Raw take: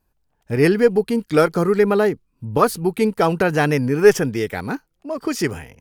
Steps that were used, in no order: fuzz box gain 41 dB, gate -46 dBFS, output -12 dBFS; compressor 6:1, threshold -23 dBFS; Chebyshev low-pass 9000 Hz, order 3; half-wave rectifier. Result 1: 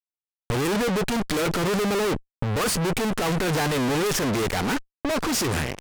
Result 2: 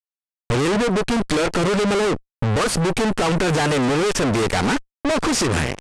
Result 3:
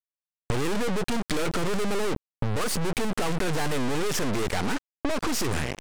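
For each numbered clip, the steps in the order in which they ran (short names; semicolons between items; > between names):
half-wave rectifier > Chebyshev low-pass > fuzz box > compressor; compressor > half-wave rectifier > fuzz box > Chebyshev low-pass; fuzz box > Chebyshev low-pass > half-wave rectifier > compressor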